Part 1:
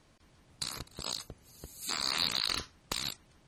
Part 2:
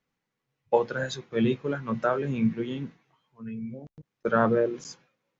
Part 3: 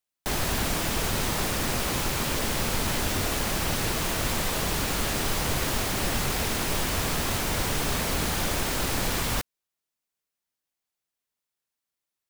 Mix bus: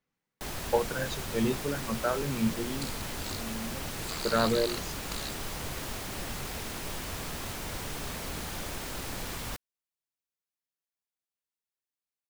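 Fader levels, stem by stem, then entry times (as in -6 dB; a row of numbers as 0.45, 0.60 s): -5.5, -4.0, -10.0 dB; 2.20, 0.00, 0.15 s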